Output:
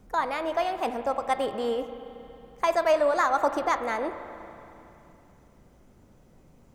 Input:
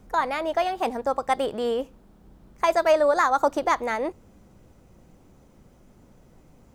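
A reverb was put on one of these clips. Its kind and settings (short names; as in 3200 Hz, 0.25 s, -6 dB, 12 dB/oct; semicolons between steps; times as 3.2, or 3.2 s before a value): spring tank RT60 3 s, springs 34/46 ms, chirp 30 ms, DRR 9.5 dB; gain -3 dB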